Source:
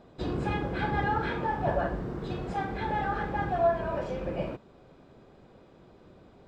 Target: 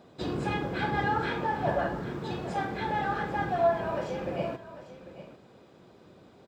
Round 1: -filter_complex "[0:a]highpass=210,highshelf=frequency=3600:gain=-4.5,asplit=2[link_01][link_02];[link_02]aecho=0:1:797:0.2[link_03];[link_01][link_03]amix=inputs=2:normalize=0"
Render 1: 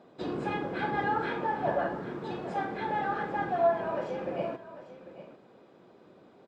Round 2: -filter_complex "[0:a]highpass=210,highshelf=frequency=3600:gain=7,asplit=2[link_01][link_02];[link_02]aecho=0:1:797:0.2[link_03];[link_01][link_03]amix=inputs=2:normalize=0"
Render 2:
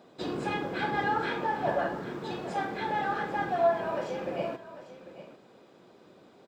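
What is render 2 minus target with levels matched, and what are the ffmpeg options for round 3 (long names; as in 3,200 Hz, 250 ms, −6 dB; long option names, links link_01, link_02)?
125 Hz band −6.0 dB
-filter_complex "[0:a]highpass=98,highshelf=frequency=3600:gain=7,asplit=2[link_01][link_02];[link_02]aecho=0:1:797:0.2[link_03];[link_01][link_03]amix=inputs=2:normalize=0"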